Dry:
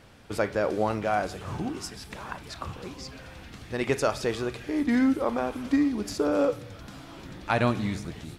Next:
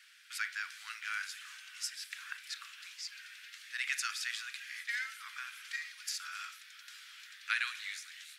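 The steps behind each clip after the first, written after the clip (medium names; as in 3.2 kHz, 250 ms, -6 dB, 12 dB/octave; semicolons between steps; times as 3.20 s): steep high-pass 1.5 kHz 48 dB/octave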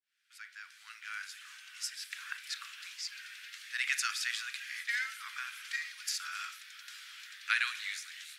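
fade-in on the opening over 2.49 s; trim +3 dB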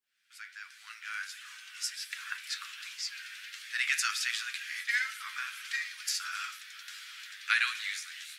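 flange 1.4 Hz, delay 7.6 ms, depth 5.1 ms, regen +42%; trim +7 dB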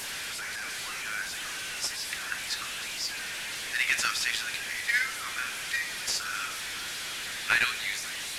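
one-bit delta coder 64 kbps, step -33.5 dBFS; trim +3.5 dB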